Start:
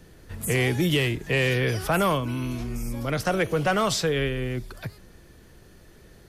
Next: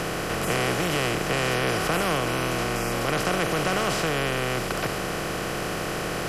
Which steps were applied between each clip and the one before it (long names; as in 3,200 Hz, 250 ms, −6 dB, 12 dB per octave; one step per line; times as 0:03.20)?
compressor on every frequency bin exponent 0.2
notch filter 3,600 Hz, Q 19
level −9 dB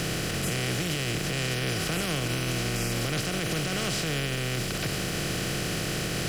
graphic EQ with 10 bands 125 Hz +5 dB, 500 Hz −3 dB, 1,000 Hz −10 dB, 4,000 Hz +4 dB, 8,000 Hz +3 dB
brickwall limiter −19.5 dBFS, peak gain reduction 7 dB
bit-depth reduction 8 bits, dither none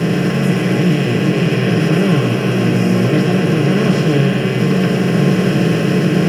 brickwall limiter −22 dBFS, peak gain reduction 3 dB
echo with a time of its own for lows and highs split 730 Hz, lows 554 ms, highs 125 ms, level −5 dB
convolution reverb RT60 0.15 s, pre-delay 3 ms, DRR −3.5 dB
level −4.5 dB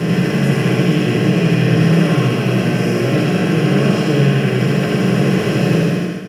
fade-out on the ending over 0.54 s
on a send: repeating echo 79 ms, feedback 49%, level −3 dB
on the sum: level −2.5 dB